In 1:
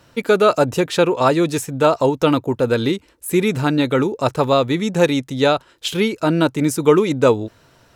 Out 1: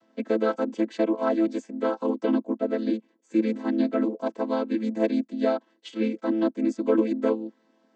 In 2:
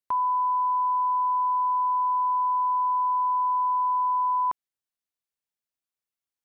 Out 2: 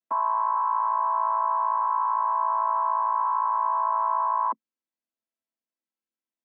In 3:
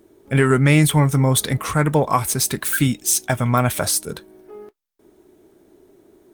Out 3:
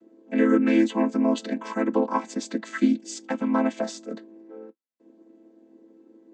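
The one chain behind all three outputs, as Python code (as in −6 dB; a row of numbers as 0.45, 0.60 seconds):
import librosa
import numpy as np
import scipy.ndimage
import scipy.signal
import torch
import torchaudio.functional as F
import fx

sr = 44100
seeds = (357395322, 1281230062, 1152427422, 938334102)

y = fx.chord_vocoder(x, sr, chord='minor triad', root=57)
y = y * 10.0 ** (-26 / 20.0) / np.sqrt(np.mean(np.square(y)))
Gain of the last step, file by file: −7.5, +1.5, −4.5 decibels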